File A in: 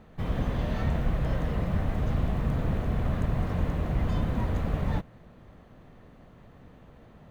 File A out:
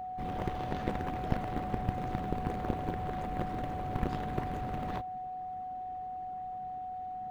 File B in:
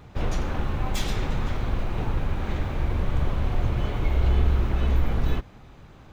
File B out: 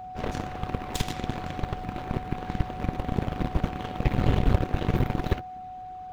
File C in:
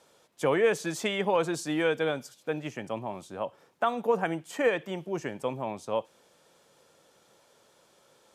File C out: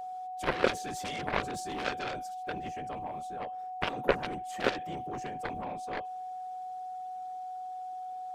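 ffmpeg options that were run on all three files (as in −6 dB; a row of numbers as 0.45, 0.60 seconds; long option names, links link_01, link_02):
-af "afftfilt=real='hypot(re,im)*cos(2*PI*random(0))':imag='hypot(re,im)*sin(2*PI*random(1))':win_size=512:overlap=0.75,aeval=exprs='0.178*(cos(1*acos(clip(val(0)/0.178,-1,1)))-cos(1*PI/2))+0.0355*(cos(2*acos(clip(val(0)/0.178,-1,1)))-cos(2*PI/2))+0.00891*(cos(4*acos(clip(val(0)/0.178,-1,1)))-cos(4*PI/2))+0.001*(cos(5*acos(clip(val(0)/0.178,-1,1)))-cos(5*PI/2))+0.0447*(cos(7*acos(clip(val(0)/0.178,-1,1)))-cos(7*PI/2))':channel_layout=same,aeval=exprs='val(0)+0.00891*sin(2*PI*740*n/s)':channel_layout=same,volume=4dB"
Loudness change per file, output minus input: −7.0, −2.5, −5.5 LU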